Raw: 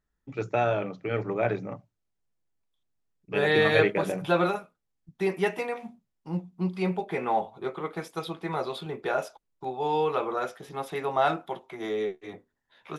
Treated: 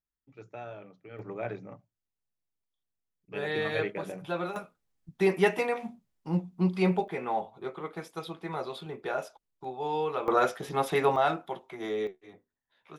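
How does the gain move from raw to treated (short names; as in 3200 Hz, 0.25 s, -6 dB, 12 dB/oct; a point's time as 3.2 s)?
-17 dB
from 1.19 s -9 dB
from 4.56 s +2.5 dB
from 7.08 s -4.5 dB
from 10.28 s +6 dB
from 11.16 s -2 dB
from 12.07 s -10.5 dB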